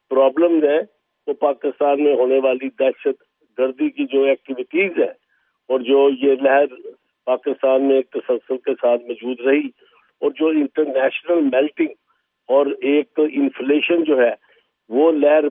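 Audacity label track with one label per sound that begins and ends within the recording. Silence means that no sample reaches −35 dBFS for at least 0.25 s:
1.280000	3.140000	sound
3.580000	5.120000	sound
5.690000	6.910000	sound
7.270000	9.690000	sound
10.220000	11.930000	sound
12.490000	14.350000	sound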